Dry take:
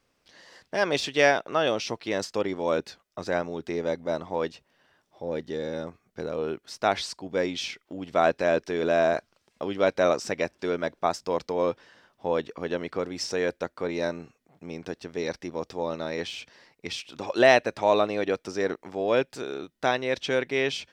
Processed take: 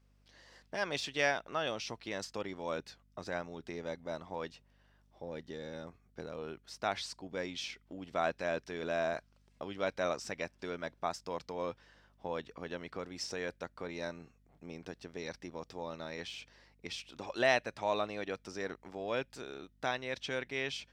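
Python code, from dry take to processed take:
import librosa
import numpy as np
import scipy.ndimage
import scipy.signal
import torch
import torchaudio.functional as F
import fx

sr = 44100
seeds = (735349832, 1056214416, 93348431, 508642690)

y = fx.dynamic_eq(x, sr, hz=400.0, q=0.82, threshold_db=-36.0, ratio=4.0, max_db=-6)
y = fx.add_hum(y, sr, base_hz=50, snr_db=29)
y = F.gain(torch.from_numpy(y), -8.0).numpy()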